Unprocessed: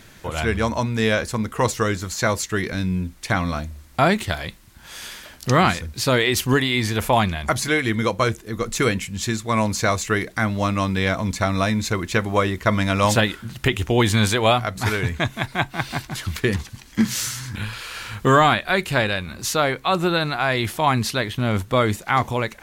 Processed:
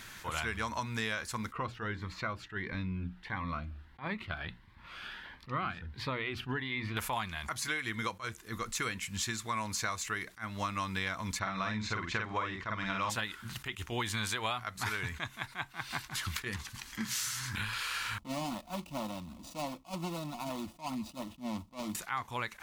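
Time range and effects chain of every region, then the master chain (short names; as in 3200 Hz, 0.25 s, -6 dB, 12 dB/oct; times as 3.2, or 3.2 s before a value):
1.52–6.97 air absorption 420 m + notches 60/120/180/240/300 Hz + cascading phaser rising 1.5 Hz
11.39–13.1 air absorption 140 m + doubler 47 ms -3 dB
18.18–21.95 median filter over 41 samples + fixed phaser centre 430 Hz, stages 6 + notch comb 400 Hz
whole clip: resonant low shelf 790 Hz -7.5 dB, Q 1.5; compressor 5:1, threshold -33 dBFS; attack slew limiter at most 270 dB/s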